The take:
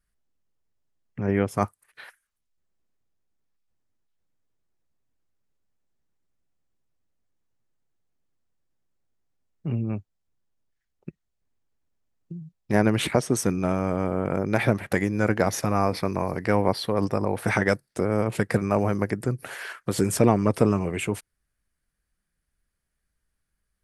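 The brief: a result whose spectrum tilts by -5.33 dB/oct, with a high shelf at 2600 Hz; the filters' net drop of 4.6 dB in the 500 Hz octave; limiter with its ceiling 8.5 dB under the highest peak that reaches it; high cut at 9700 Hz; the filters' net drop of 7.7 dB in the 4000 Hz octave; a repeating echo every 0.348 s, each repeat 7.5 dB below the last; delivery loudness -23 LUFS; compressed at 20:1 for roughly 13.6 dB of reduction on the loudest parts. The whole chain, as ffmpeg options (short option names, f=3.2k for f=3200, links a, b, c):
-af "lowpass=9.7k,equalizer=f=500:t=o:g=-5.5,highshelf=f=2.6k:g=-5,equalizer=f=4k:t=o:g=-5.5,acompressor=threshold=-29dB:ratio=20,alimiter=limit=-24dB:level=0:latency=1,aecho=1:1:348|696|1044|1392|1740:0.422|0.177|0.0744|0.0312|0.0131,volume=15dB"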